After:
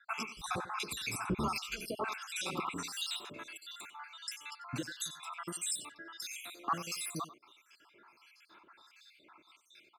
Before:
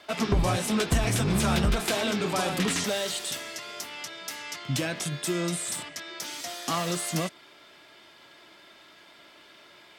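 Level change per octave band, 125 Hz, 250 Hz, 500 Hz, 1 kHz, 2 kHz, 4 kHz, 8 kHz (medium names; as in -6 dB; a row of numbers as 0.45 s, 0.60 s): -17.5 dB, -14.0 dB, -15.0 dB, -6.5 dB, -9.0 dB, -9.0 dB, -9.0 dB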